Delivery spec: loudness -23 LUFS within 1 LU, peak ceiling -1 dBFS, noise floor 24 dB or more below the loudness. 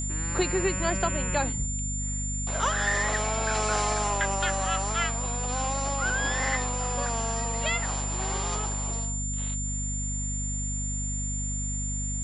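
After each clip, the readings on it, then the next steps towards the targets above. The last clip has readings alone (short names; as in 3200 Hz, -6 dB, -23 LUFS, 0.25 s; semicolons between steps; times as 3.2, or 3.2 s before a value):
hum 50 Hz; harmonics up to 250 Hz; hum level -30 dBFS; steady tone 7200 Hz; tone level -32 dBFS; loudness -28.0 LUFS; peak -13.0 dBFS; loudness target -23.0 LUFS
-> de-hum 50 Hz, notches 5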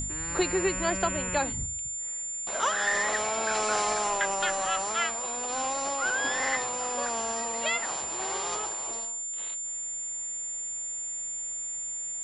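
hum none; steady tone 7200 Hz; tone level -32 dBFS
-> notch 7200 Hz, Q 30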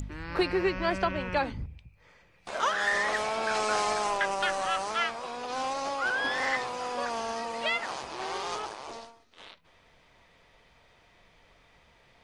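steady tone none; loudness -30.0 LUFS; peak -16.0 dBFS; loudness target -23.0 LUFS
-> gain +7 dB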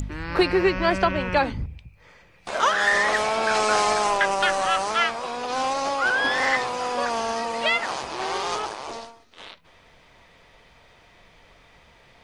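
loudness -23.0 LUFS; peak -9.0 dBFS; noise floor -55 dBFS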